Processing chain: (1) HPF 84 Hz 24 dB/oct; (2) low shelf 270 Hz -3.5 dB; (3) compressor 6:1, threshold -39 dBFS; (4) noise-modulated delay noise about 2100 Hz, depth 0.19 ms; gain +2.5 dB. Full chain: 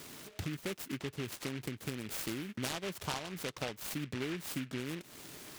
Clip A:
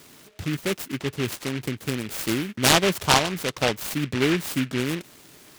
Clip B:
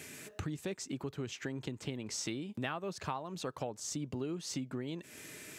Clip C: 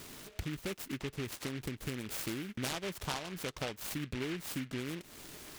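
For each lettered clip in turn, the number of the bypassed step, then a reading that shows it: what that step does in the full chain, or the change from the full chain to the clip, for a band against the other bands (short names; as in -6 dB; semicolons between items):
3, mean gain reduction 10.5 dB; 4, 2 kHz band -4.0 dB; 1, crest factor change -1.5 dB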